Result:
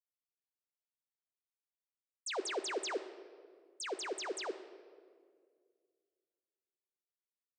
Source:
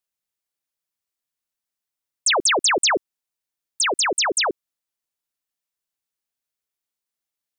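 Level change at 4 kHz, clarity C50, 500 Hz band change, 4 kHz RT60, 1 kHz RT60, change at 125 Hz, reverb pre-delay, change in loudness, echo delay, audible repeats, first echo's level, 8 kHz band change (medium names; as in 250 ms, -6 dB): -22.0 dB, 11.5 dB, -14.0 dB, 1.2 s, 1.7 s, no reading, 4 ms, -20.5 dB, no echo, no echo, no echo, -23.0 dB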